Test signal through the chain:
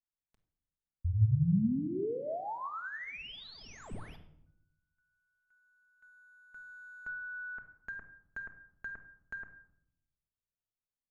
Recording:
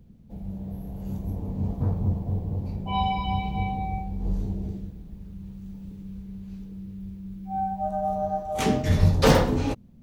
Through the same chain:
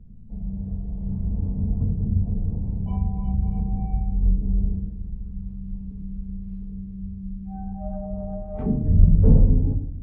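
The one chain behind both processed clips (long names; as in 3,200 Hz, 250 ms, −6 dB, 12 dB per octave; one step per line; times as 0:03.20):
in parallel at −9 dB: sample-rate reduction 8,300 Hz, jitter 0%
on the sum: treble cut that deepens with the level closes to 400 Hz, closed at −18.5 dBFS
RIAA equalisation playback
rectangular room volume 1,900 cubic metres, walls furnished, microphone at 1.5 metres
level −12 dB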